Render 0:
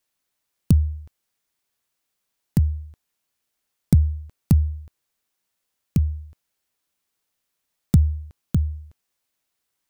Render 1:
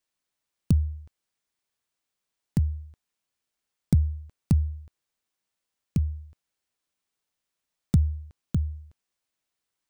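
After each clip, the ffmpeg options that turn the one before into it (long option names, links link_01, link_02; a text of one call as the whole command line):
ffmpeg -i in.wav -af "equalizer=frequency=14000:width=1.5:gain=-10.5,volume=-5dB" out.wav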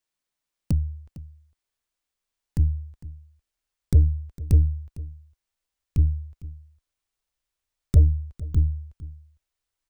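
ffmpeg -i in.wav -af "asubboost=boost=9.5:cutoff=57,aeval=exprs='0.596*(cos(1*acos(clip(val(0)/0.596,-1,1)))-cos(1*PI/2))+0.0335*(cos(8*acos(clip(val(0)/0.596,-1,1)))-cos(8*PI/2))':channel_layout=same,aecho=1:1:455:0.126,volume=-1.5dB" out.wav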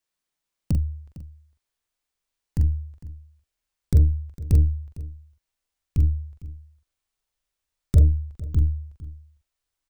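ffmpeg -i in.wav -filter_complex "[0:a]asplit=2[link_01][link_02];[link_02]adelay=43,volume=-5.5dB[link_03];[link_01][link_03]amix=inputs=2:normalize=0" out.wav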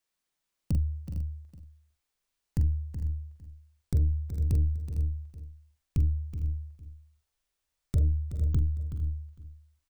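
ffmpeg -i in.wav -filter_complex "[0:a]alimiter=limit=-17dB:level=0:latency=1:release=254,asplit=2[link_01][link_02];[link_02]aecho=0:1:375|429:0.299|0.119[link_03];[link_01][link_03]amix=inputs=2:normalize=0" out.wav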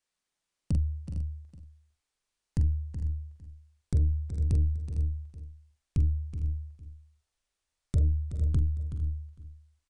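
ffmpeg -i in.wav -af "aresample=22050,aresample=44100" out.wav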